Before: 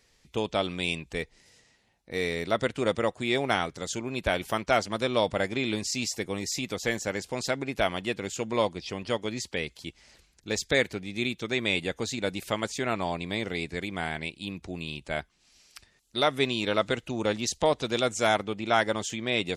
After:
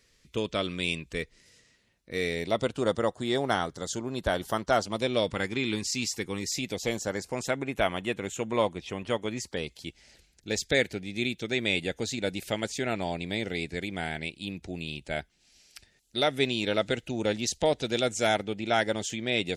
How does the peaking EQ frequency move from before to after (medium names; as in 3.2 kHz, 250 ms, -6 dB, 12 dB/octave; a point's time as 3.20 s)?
peaking EQ -14.5 dB 0.35 oct
2.13 s 800 Hz
2.85 s 2.4 kHz
4.76 s 2.4 kHz
5.36 s 630 Hz
6.35 s 630 Hz
7.49 s 4.8 kHz
9.35 s 4.8 kHz
9.80 s 1.1 kHz